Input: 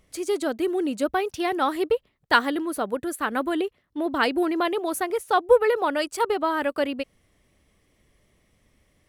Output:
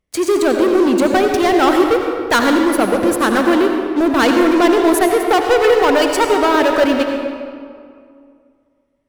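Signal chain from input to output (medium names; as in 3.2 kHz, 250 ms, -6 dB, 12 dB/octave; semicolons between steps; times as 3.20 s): treble shelf 5 kHz -5.5 dB; waveshaping leveller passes 5; on a send: reverberation RT60 2.2 s, pre-delay 69 ms, DRR 3 dB; on the sum: trim -3.5 dB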